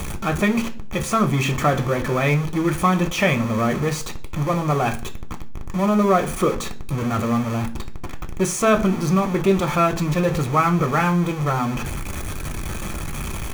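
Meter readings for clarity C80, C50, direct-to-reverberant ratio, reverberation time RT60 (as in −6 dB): 21.0 dB, 16.5 dB, 5.5 dB, 0.45 s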